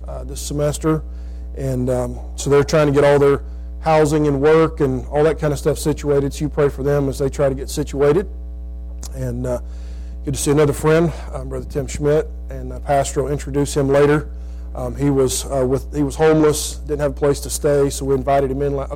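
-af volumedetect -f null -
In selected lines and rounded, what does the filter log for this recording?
mean_volume: -18.0 dB
max_volume: -7.5 dB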